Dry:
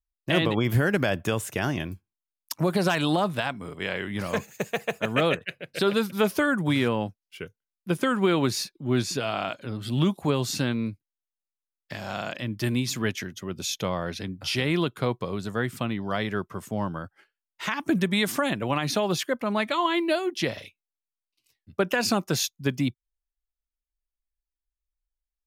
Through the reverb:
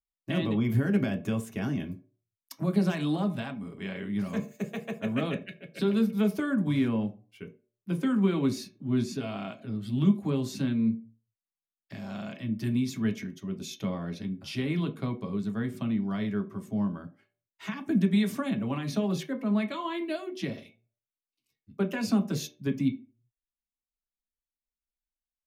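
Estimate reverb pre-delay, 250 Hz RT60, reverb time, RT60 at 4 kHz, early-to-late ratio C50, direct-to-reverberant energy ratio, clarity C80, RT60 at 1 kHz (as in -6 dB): 3 ms, 0.40 s, 0.45 s, 0.20 s, 15.0 dB, 2.0 dB, 19.5 dB, 0.40 s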